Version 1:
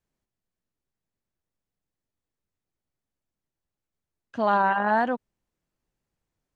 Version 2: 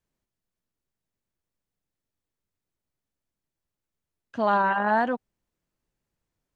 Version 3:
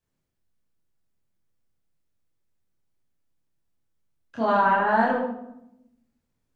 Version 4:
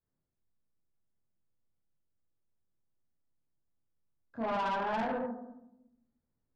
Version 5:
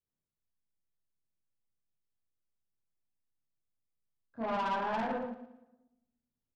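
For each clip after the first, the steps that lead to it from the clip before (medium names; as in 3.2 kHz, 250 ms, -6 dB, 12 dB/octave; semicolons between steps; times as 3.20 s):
band-stop 770 Hz, Q 25
reverberation RT60 0.85 s, pre-delay 27 ms, DRR -4 dB; trim -3.5 dB
boxcar filter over 15 samples; saturation -22.5 dBFS, distortion -10 dB; trim -6 dB
on a send: feedback delay 114 ms, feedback 49%, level -12 dB; on the sum: upward expansion 1.5:1, over -47 dBFS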